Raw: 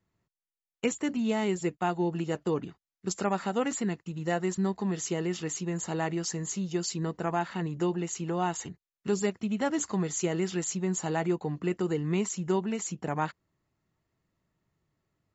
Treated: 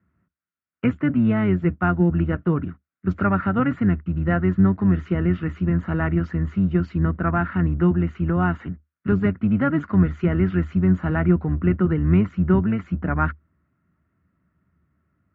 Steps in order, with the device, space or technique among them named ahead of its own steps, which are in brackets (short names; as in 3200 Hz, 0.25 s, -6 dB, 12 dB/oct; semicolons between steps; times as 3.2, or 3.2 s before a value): sub-octave bass pedal (octaver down 1 oct, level -3 dB; speaker cabinet 66–2200 Hz, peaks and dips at 76 Hz +10 dB, 180 Hz +7 dB, 260 Hz +5 dB, 460 Hz -7 dB, 840 Hz -9 dB, 1400 Hz +10 dB); gain +6 dB